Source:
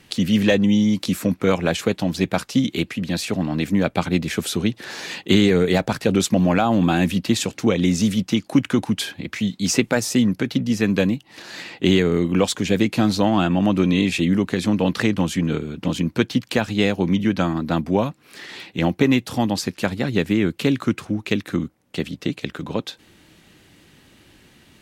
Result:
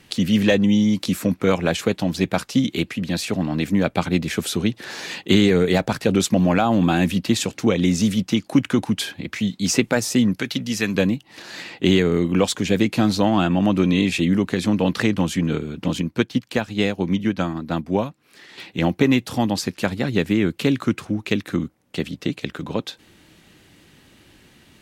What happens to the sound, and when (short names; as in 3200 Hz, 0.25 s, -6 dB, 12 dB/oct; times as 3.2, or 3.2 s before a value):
10.36–10.95 tilt shelf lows -5.5 dB, about 1100 Hz
16.01–18.58 upward expander, over -29 dBFS